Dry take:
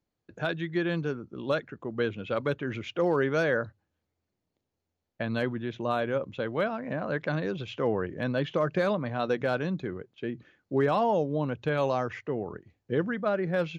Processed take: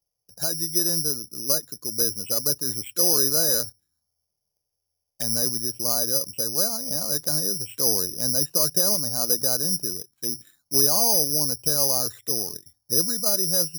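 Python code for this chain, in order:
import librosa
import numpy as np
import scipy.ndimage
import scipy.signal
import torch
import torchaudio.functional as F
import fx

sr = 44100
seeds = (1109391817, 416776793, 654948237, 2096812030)

y = fx.env_phaser(x, sr, low_hz=270.0, high_hz=2300.0, full_db=-29.0)
y = (np.kron(scipy.signal.resample_poly(y, 1, 8), np.eye(8)[0]) * 8)[:len(y)]
y = F.gain(torch.from_numpy(y), -3.0).numpy()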